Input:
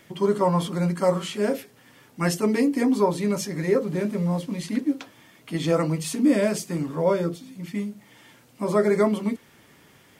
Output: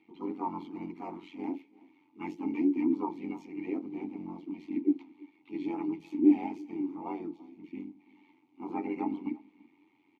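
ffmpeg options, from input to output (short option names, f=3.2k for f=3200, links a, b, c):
-filter_complex "[0:a]aecho=1:1:3.2:0.4,asplit=2[a][b];[b]asetrate=55563,aresample=44100,atempo=0.793701,volume=-3dB[c];[a][c]amix=inputs=2:normalize=0,tremolo=f=91:d=0.788,asplit=3[d][e][f];[d]bandpass=f=300:t=q:w=8,volume=0dB[g];[e]bandpass=f=870:t=q:w=8,volume=-6dB[h];[f]bandpass=f=2.24k:t=q:w=8,volume=-9dB[i];[g][h][i]amix=inputs=3:normalize=0,equalizer=f=8.9k:t=o:w=0.54:g=-11.5,bandreject=f=5.2k:w=16,asplit=2[j][k];[k]aecho=0:1:336:0.0668[l];[j][l]amix=inputs=2:normalize=0"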